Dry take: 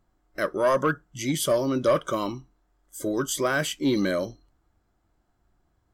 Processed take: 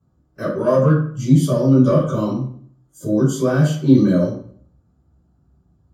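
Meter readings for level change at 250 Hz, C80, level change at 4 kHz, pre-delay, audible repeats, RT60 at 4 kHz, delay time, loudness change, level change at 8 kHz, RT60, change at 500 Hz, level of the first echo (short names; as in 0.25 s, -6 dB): +12.0 dB, 7.5 dB, -4.0 dB, 3 ms, none, 0.40 s, none, +9.0 dB, -2.5 dB, 0.55 s, +5.5 dB, none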